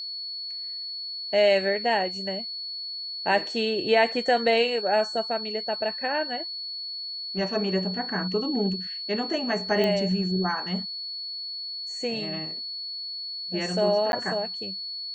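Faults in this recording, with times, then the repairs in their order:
tone 4400 Hz -32 dBFS
9.84 pop -14 dBFS
14.12–14.13 gap 11 ms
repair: de-click; notch 4400 Hz, Q 30; interpolate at 14.12, 11 ms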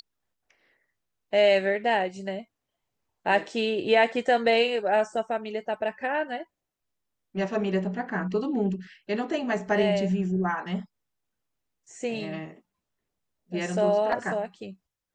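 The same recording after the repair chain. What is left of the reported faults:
none

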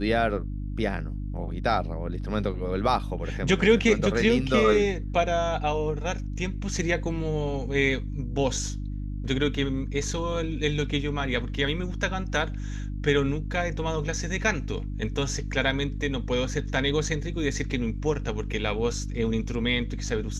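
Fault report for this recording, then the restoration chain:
hum 50 Hz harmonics 6 -32 dBFS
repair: de-hum 50 Hz, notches 6

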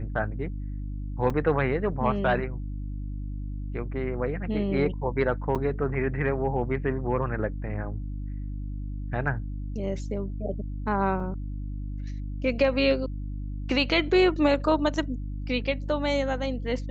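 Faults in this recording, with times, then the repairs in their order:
hum 50 Hz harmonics 6 -33 dBFS
1.3 gap 3.3 ms
5.55–5.56 gap 6.9 ms
11.2 gap 2.6 ms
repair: de-hum 50 Hz, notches 6; interpolate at 1.3, 3.3 ms; interpolate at 5.55, 6.9 ms; interpolate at 11.2, 2.6 ms

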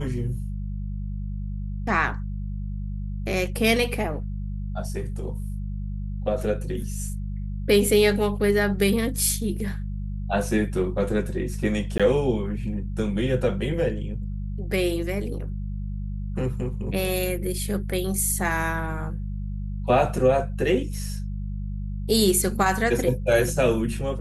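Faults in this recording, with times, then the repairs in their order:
hum 50 Hz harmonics 4 -30 dBFS
11.98–12 gap 16 ms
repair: de-hum 50 Hz, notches 4; interpolate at 11.98, 16 ms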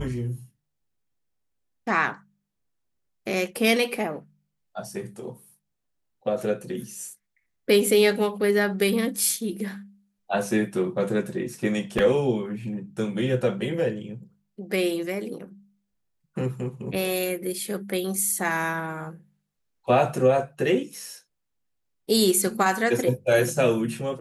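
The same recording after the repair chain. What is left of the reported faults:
none

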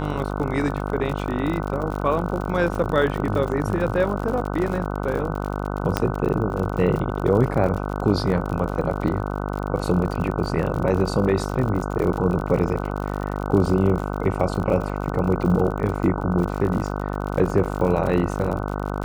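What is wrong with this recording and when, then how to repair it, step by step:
buzz 50 Hz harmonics 30 -27 dBFS
crackle 57/s -28 dBFS
5.97 pop -5 dBFS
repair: de-click; de-hum 50 Hz, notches 30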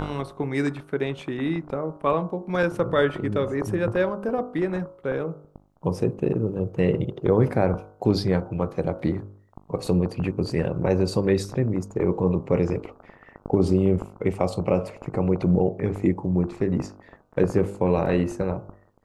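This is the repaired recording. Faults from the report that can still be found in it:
none

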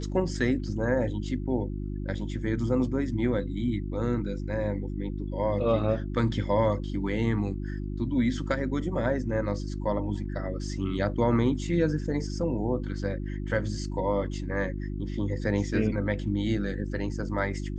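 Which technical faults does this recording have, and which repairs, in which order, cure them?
hum 50 Hz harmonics 7 -33 dBFS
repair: de-hum 50 Hz, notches 7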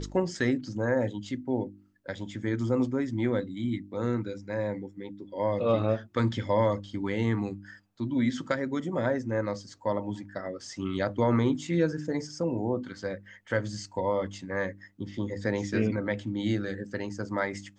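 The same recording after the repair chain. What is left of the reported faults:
none

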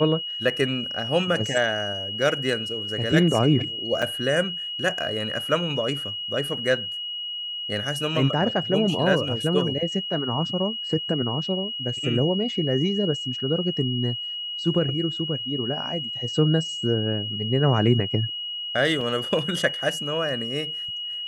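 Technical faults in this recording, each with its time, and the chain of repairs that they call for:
tone 2900 Hz -29 dBFS
4.02–4.03 gap 5.3 ms
19.01 gap 3.4 ms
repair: notch 2900 Hz, Q 30; interpolate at 4.02, 5.3 ms; interpolate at 19.01, 3.4 ms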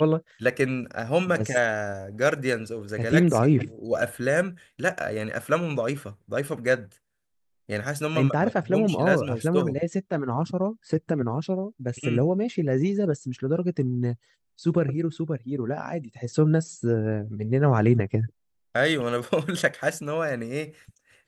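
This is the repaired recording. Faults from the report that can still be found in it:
none

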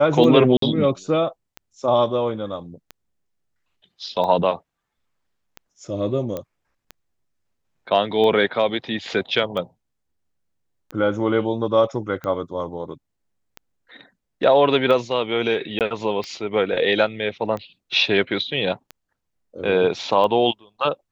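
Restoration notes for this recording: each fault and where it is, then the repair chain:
tick 45 rpm -18 dBFS
0.57–0.62 gap 53 ms
6.37 pop -15 dBFS
15.79–15.81 gap 18 ms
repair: de-click; interpolate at 0.57, 53 ms; interpolate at 15.79, 18 ms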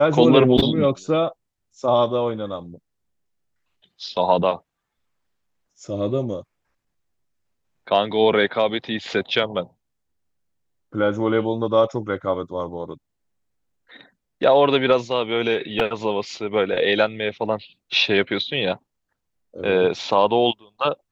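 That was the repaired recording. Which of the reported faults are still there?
none

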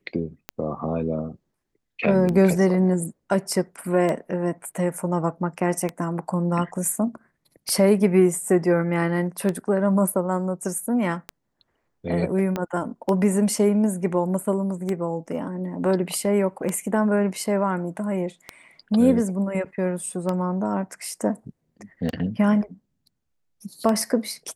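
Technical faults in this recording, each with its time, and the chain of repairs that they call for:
tick 33 1/3 rpm -13 dBFS
12.56 pop -13 dBFS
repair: de-click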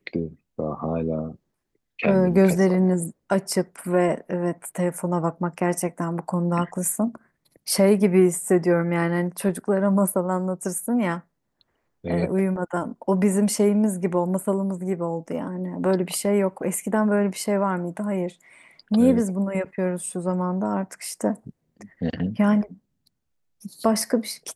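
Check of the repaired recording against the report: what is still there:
12.56 pop

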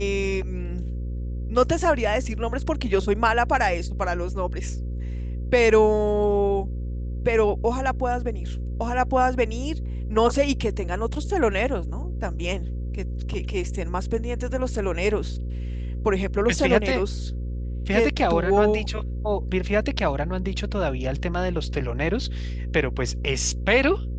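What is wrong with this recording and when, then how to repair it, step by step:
buzz 60 Hz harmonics 9 -29 dBFS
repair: de-hum 60 Hz, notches 9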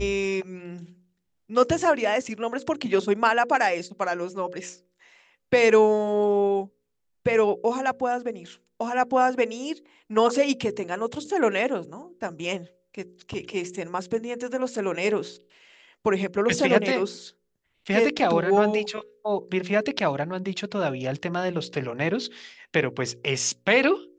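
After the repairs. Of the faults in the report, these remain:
none

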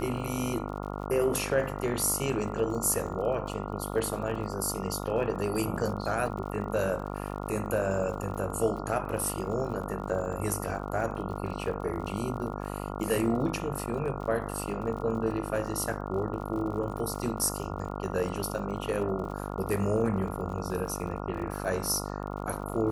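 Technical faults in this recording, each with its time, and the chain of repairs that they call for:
buzz 50 Hz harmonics 28 -36 dBFS
crackle 55/s -39 dBFS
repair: de-click; de-hum 50 Hz, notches 28

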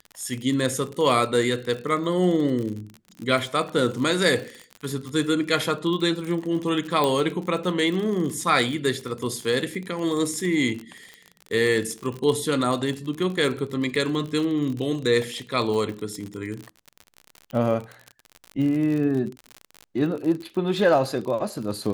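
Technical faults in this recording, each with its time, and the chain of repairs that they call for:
crackle 47/s -29 dBFS
7.04 pop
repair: de-click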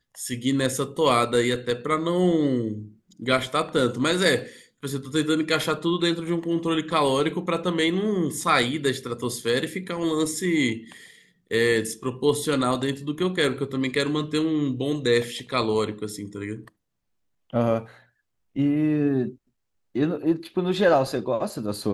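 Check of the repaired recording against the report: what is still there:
none

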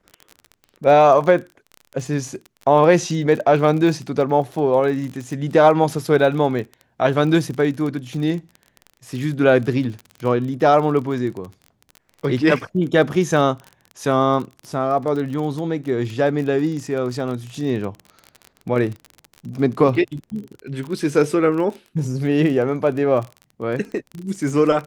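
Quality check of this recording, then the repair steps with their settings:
crackle 28/s -27 dBFS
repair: de-click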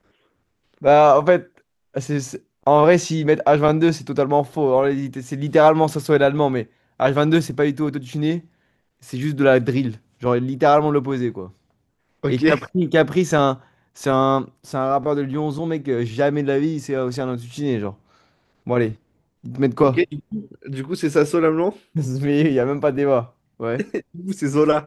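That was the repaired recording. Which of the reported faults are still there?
none

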